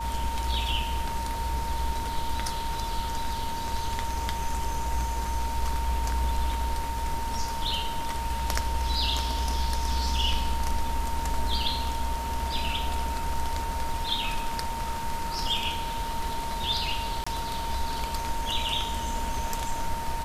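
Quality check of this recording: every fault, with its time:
tone 920 Hz -32 dBFS
17.24–17.27 gap 25 ms

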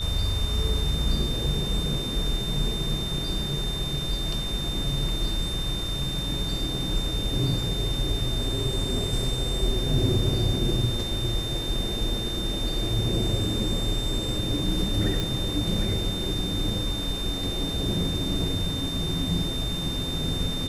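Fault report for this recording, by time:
tone 3600 Hz -31 dBFS
15.2 pop

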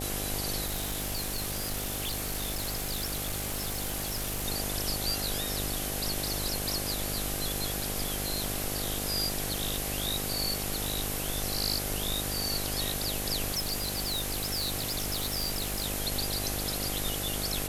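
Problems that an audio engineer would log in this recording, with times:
buzz 50 Hz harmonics 16 -37 dBFS
0.65–4.47 clipped -28.5 dBFS
6.69 pop
13.51–15.86 clipped -26.5 dBFS

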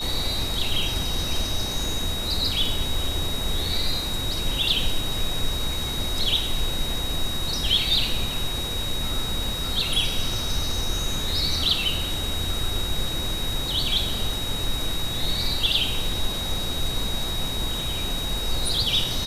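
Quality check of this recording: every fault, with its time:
tone 3800 Hz -29 dBFS

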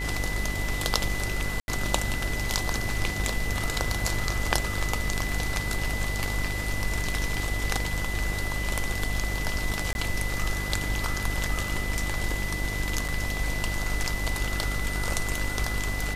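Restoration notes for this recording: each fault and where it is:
buzz 50 Hz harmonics 20 -32 dBFS
tone 2000 Hz -33 dBFS
1.6–1.68 gap 81 ms
9.93–9.95 gap 21 ms
13.08–13.09 gap 6.9 ms

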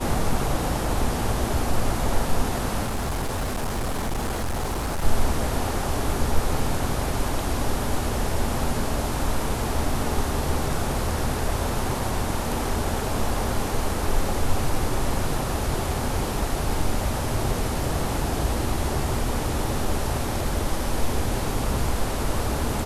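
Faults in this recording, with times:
2.83–5.05 clipped -22.5 dBFS

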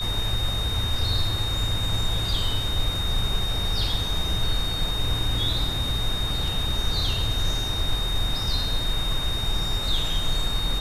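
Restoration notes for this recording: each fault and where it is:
tone 3700 Hz -28 dBFS

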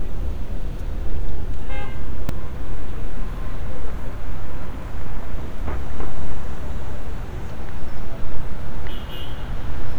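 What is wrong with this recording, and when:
2.29 gap 2.5 ms

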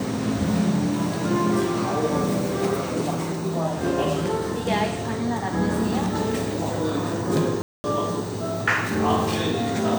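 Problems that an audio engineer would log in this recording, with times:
7.62–7.84 gap 0.22 s

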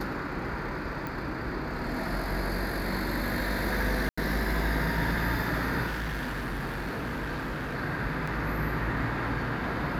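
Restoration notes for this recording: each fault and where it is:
1.07 pop
4.09–4.17 gap 85 ms
5.86–7.76 clipped -29.5 dBFS
8.27 gap 4.8 ms

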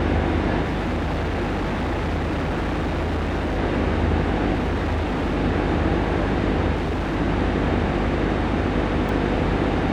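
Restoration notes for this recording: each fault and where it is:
buzz 50 Hz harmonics 15 -26 dBFS
0.61–3.59 clipped -20.5 dBFS
4.54–5.37 clipped -19 dBFS
6.76–7.17 clipped -20.5 dBFS
9.09 gap 2.3 ms

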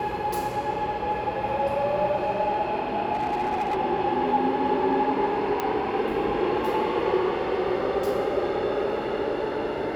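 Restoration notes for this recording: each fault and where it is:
3.13–3.77 clipped -22 dBFS
5.6 pop -12 dBFS

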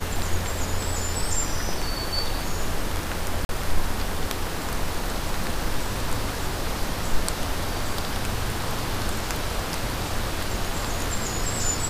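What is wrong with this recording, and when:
3.45–3.49 gap 41 ms

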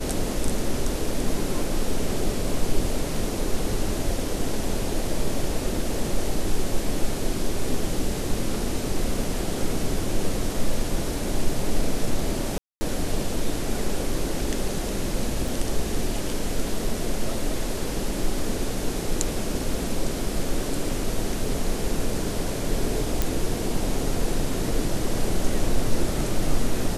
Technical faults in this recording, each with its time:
12.58–12.81 gap 0.23 s
15.48 gap 2.9 ms
23.22 pop

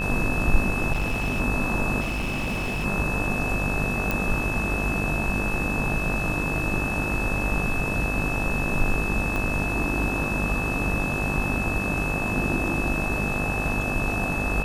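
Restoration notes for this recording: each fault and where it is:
buzz 50 Hz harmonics 36 -30 dBFS
tone 2600 Hz -28 dBFS
0.92–1.41 clipped -21 dBFS
2–2.86 clipped -24 dBFS
4.11 pop
9.36 pop

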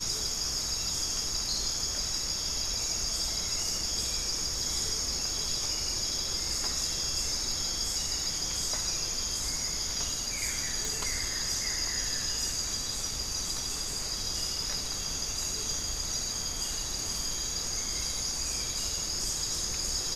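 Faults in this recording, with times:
10.85 pop

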